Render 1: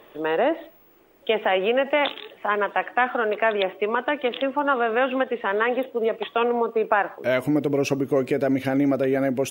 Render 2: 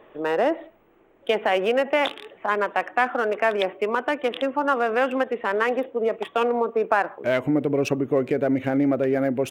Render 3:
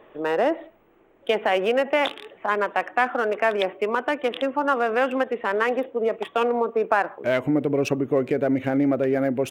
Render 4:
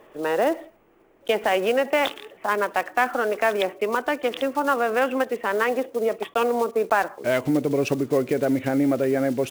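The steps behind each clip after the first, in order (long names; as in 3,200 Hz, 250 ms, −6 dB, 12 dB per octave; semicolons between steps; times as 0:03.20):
adaptive Wiener filter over 9 samples
no processing that can be heard
one scale factor per block 5 bits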